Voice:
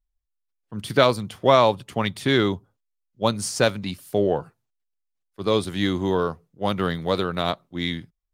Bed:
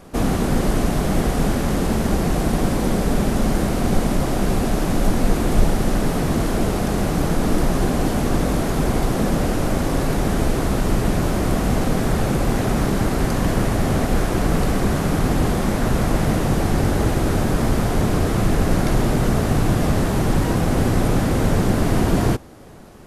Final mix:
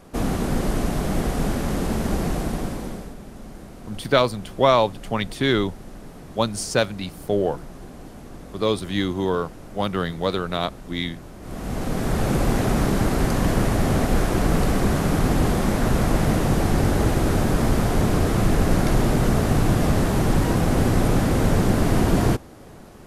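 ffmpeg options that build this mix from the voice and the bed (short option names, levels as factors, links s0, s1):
-filter_complex "[0:a]adelay=3150,volume=0.944[s0];[1:a]volume=5.96,afade=t=out:st=2.25:d=0.9:silence=0.149624,afade=t=in:st=11.4:d=0.96:silence=0.105925[s1];[s0][s1]amix=inputs=2:normalize=0"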